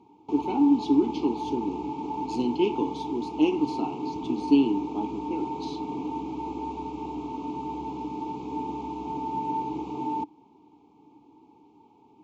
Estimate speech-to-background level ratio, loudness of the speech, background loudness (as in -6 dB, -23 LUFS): 6.5 dB, -27.0 LUFS, -33.5 LUFS